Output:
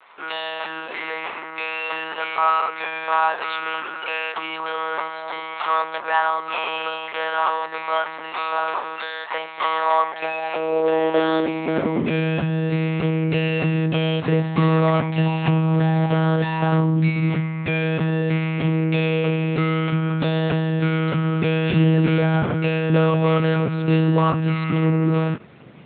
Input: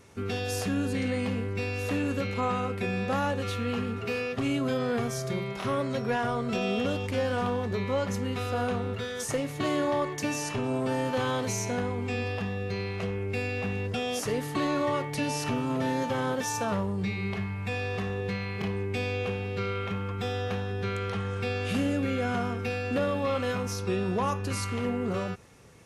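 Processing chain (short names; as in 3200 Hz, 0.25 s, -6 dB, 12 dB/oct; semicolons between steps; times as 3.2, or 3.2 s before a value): vibrato 0.55 Hz 80 cents; monotone LPC vocoder at 8 kHz 160 Hz; high-pass sweep 970 Hz -> 150 Hz, 9.83–12.43; gain +8.5 dB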